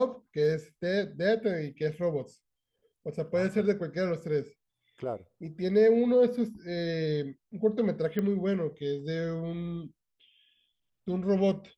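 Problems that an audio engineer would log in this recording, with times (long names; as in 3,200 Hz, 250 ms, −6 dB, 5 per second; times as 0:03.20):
0:08.19: click −19 dBFS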